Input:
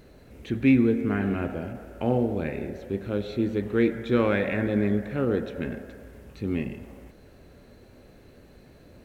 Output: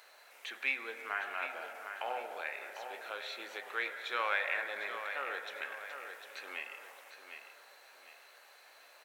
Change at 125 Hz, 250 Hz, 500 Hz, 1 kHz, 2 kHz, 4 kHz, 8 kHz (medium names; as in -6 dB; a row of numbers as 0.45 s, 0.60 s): under -40 dB, -36.0 dB, -17.0 dB, -1.5 dB, 0.0 dB, +1.0 dB, no reading